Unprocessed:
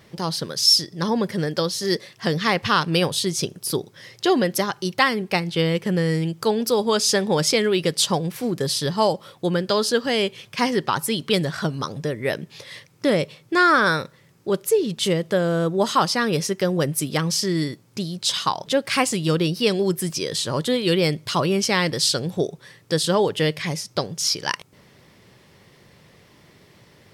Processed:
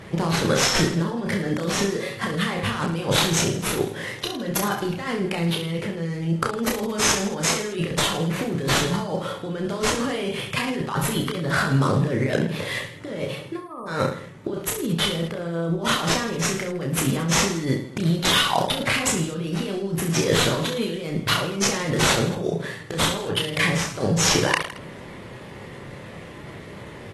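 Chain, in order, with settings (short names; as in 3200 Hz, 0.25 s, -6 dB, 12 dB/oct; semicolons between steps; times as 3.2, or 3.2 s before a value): median filter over 9 samples; negative-ratio compressor -31 dBFS, ratio -1; spectral delete 13.57–13.88, 1300–8600 Hz; reverse bouncing-ball echo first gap 30 ms, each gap 1.2×, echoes 5; gain +3.5 dB; AAC 32 kbps 32000 Hz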